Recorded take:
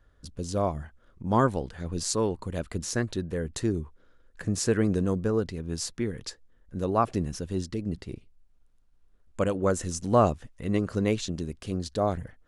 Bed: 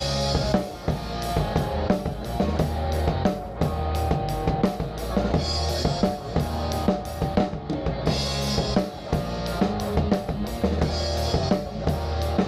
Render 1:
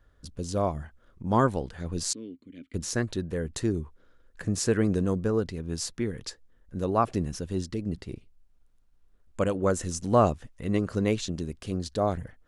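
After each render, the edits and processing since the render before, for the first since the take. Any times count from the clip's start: 2.13–2.74 vowel filter i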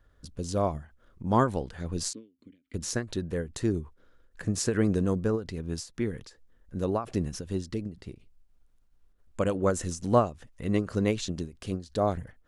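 ending taper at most 180 dB/s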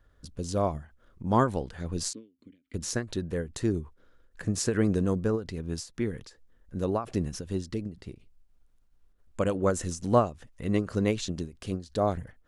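nothing audible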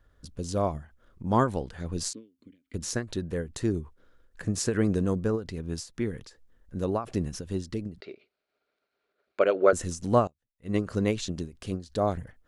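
8–9.73 speaker cabinet 380–4800 Hz, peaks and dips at 400 Hz +10 dB, 620 Hz +10 dB, 980 Hz -3 dB, 1400 Hz +9 dB, 2300 Hz +9 dB, 4200 Hz +7 dB; 10.27–10.76 upward expander 2.5:1, over -47 dBFS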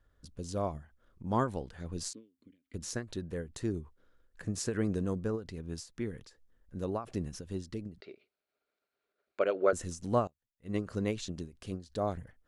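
gain -6.5 dB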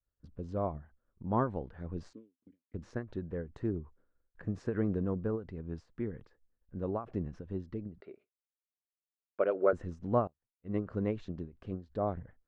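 expander -55 dBFS; LPF 1500 Hz 12 dB/oct

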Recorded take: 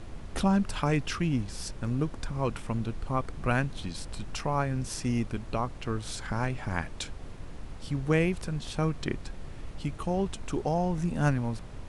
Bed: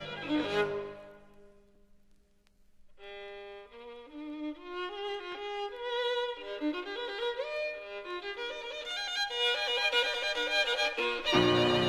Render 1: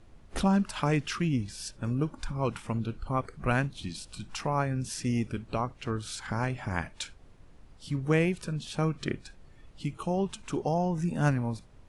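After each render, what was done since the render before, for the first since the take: noise print and reduce 13 dB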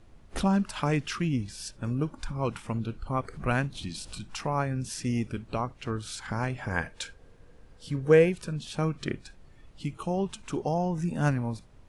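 3.13–4.19 upward compressor, threshold -32 dBFS; 6.59–8.3 small resonant body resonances 480/1600 Hz, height 11 dB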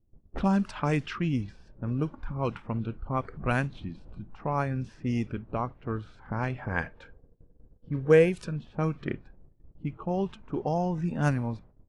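gate -50 dBFS, range -15 dB; low-pass opened by the level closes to 370 Hz, open at -21.5 dBFS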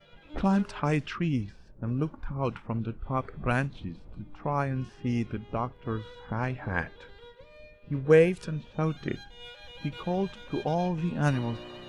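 add bed -17 dB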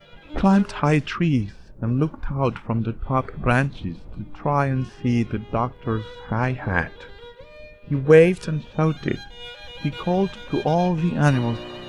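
gain +8 dB; limiter -3 dBFS, peak gain reduction 2.5 dB

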